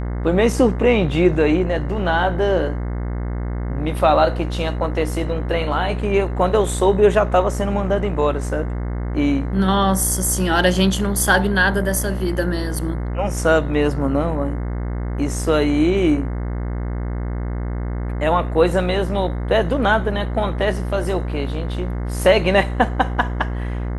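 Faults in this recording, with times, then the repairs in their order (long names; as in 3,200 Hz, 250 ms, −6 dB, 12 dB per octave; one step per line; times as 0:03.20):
mains buzz 60 Hz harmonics 36 −24 dBFS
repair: hum removal 60 Hz, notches 36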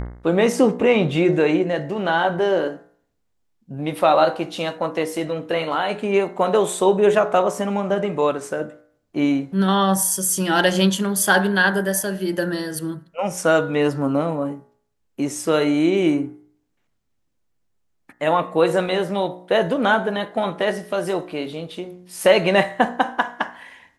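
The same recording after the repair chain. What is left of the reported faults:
none of them is left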